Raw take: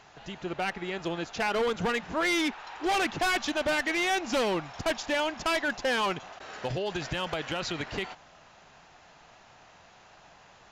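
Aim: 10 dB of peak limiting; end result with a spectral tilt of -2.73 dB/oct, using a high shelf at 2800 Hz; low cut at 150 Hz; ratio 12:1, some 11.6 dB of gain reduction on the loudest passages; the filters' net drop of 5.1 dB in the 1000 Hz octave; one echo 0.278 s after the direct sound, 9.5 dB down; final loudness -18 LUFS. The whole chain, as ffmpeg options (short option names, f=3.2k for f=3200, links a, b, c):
-af "highpass=150,equalizer=f=1k:t=o:g=-8,highshelf=f=2.8k:g=6,acompressor=threshold=-36dB:ratio=12,alimiter=level_in=8.5dB:limit=-24dB:level=0:latency=1,volume=-8.5dB,aecho=1:1:278:0.335,volume=23.5dB"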